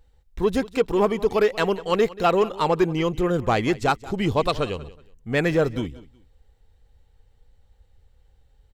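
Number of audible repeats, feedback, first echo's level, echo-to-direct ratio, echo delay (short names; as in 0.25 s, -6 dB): 2, 25%, -19.0 dB, -19.0 dB, 0.184 s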